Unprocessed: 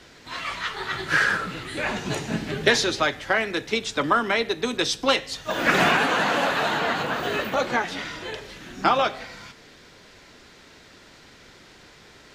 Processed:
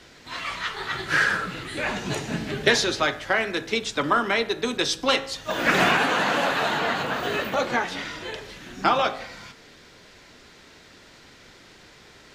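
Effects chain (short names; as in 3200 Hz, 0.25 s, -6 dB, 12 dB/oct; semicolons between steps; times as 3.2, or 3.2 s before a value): de-hum 54.01 Hz, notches 32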